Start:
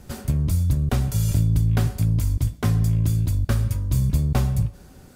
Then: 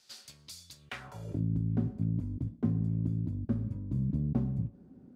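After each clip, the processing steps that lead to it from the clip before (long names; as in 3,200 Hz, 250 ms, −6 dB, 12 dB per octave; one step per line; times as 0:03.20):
band-pass filter sweep 4,500 Hz → 240 Hz, 0:00.77–0:01.43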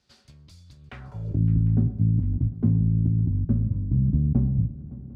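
RIAA equalisation playback
feedback echo with a long and a short gap by turns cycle 750 ms, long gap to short 3 to 1, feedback 30%, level −18.5 dB
level −1.5 dB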